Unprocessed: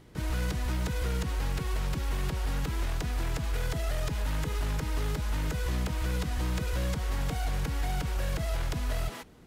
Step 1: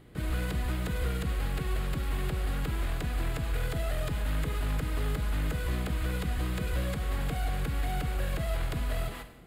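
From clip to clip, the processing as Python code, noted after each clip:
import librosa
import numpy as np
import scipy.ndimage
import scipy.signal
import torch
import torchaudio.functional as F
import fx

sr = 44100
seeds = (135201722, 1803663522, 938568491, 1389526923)

y = fx.peak_eq(x, sr, hz=5800.0, db=-13.0, octaves=0.45)
y = fx.notch(y, sr, hz=920.0, q=8.1)
y = fx.rev_schroeder(y, sr, rt60_s=0.89, comb_ms=31, drr_db=9.0)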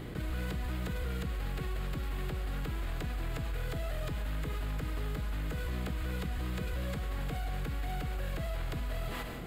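y = fx.peak_eq(x, sr, hz=9900.0, db=-6.0, octaves=0.37)
y = fx.env_flatten(y, sr, amount_pct=70)
y = F.gain(torch.from_numpy(y), -6.5).numpy()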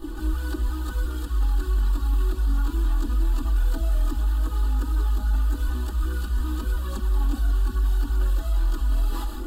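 y = fx.fixed_phaser(x, sr, hz=580.0, stages=6)
y = y + 0.89 * np.pad(y, (int(3.4 * sr / 1000.0), 0))[:len(y)]
y = fx.chorus_voices(y, sr, voices=6, hz=0.3, base_ms=21, depth_ms=3.7, mix_pct=65)
y = F.gain(torch.from_numpy(y), 8.5).numpy()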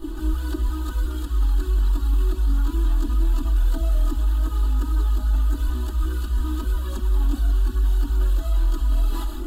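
y = x + 0.42 * np.pad(x, (int(3.1 * sr / 1000.0), 0))[:len(x)]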